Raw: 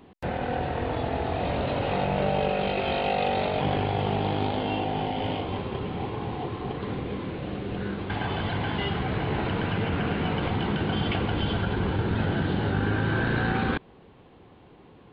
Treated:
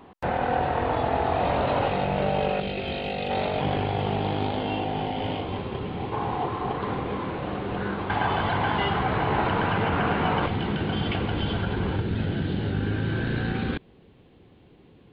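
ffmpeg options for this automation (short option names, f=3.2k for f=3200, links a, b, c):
-af "asetnsamples=n=441:p=0,asendcmd='1.88 equalizer g 1;2.6 equalizer g -9.5;3.3 equalizer g 0;6.12 equalizer g 9.5;10.46 equalizer g -1;12 equalizer g -9',equalizer=f=1k:t=o:w=1.6:g=8"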